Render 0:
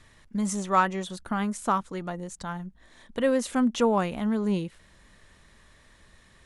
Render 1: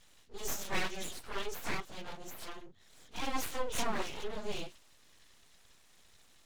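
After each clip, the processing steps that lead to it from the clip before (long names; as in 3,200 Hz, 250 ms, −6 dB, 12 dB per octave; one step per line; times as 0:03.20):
random phases in long frames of 100 ms
flat-topped bell 4,300 Hz +11.5 dB
full-wave rectification
level −8.5 dB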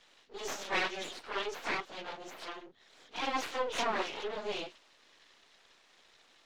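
three-way crossover with the lows and the highs turned down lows −17 dB, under 270 Hz, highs −20 dB, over 5,600 Hz
level +4.5 dB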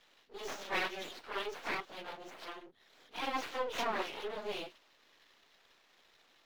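running median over 5 samples
every ending faded ahead of time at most 460 dB per second
level −2.5 dB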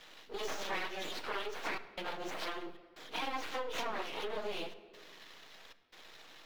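downward compressor 6 to 1, threshold −47 dBFS, peak gain reduction 16 dB
gate pattern "xxxxxxxxx.xxxx." 76 BPM −60 dB
rectangular room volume 2,600 cubic metres, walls mixed, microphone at 0.56 metres
level +10.5 dB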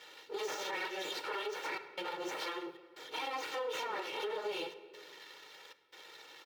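high-pass filter 190 Hz 12 dB per octave
comb filter 2.2 ms, depth 78%
brickwall limiter −29 dBFS, peak gain reduction 7 dB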